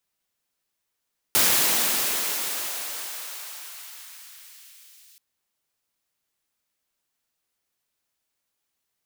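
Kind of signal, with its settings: swept filtered noise white, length 3.83 s highpass, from 120 Hz, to 3.1 kHz, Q 0.8, exponential, gain ramp -35 dB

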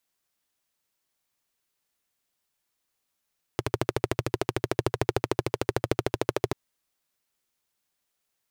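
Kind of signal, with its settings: single-cylinder engine model, steady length 2.94 s, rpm 1600, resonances 120/370 Hz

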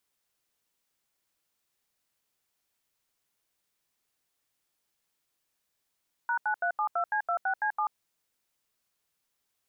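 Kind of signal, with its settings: DTMF "#9372C26C7", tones 86 ms, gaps 80 ms, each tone -28 dBFS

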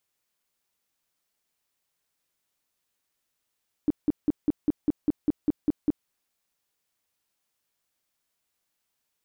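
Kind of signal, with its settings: tone bursts 298 Hz, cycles 7, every 0.20 s, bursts 11, -17.5 dBFS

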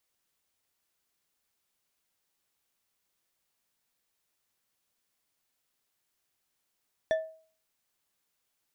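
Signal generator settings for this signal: glass hit bar, lowest mode 640 Hz, decay 0.45 s, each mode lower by 9 dB, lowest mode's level -21 dB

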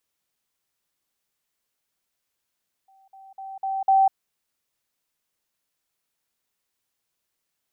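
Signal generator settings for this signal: level ladder 774 Hz -54 dBFS, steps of 10 dB, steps 5, 0.20 s 0.05 s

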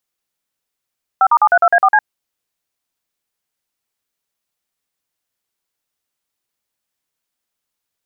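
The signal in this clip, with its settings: DTMF "5*732A4C", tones 58 ms, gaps 45 ms, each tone -10 dBFS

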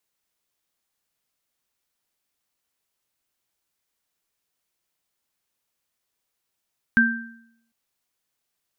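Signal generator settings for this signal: sine partials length 0.75 s, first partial 230 Hz, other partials 1.57 kHz, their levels 4 dB, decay 0.75 s, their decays 0.60 s, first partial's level -16 dB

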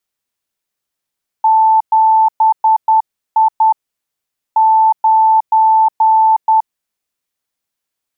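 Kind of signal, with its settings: Morse "7I 9" 10 wpm 881 Hz -6.5 dBFS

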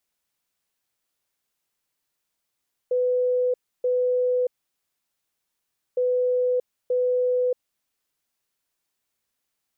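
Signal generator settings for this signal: beep pattern sine 499 Hz, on 0.63 s, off 0.30 s, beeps 2, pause 1.50 s, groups 2, -19 dBFS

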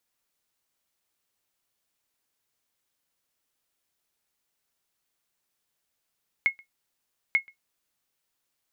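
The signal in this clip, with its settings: sonar ping 2.17 kHz, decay 0.12 s, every 0.89 s, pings 2, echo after 0.13 s, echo -28 dB -13 dBFS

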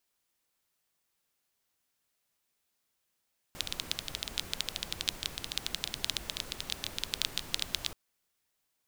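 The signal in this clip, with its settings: rain from filtered ticks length 4.38 s, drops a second 13, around 3.6 kHz, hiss -7 dB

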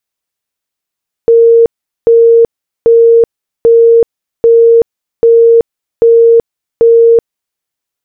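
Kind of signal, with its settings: tone bursts 462 Hz, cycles 175, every 0.79 s, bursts 8, -1.5 dBFS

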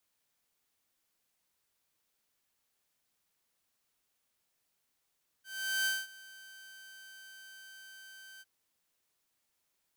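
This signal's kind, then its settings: ADSR saw 1.55 kHz, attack 417 ms, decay 210 ms, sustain -22 dB, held 2.97 s, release 35 ms -25.5 dBFS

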